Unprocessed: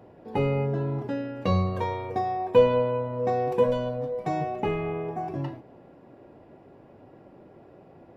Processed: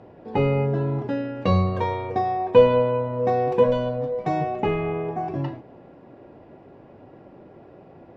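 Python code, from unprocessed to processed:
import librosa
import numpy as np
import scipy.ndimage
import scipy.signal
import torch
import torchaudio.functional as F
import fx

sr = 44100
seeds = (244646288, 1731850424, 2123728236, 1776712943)

y = scipy.signal.sosfilt(scipy.signal.butter(2, 5300.0, 'lowpass', fs=sr, output='sos'), x)
y = y * librosa.db_to_amplitude(4.0)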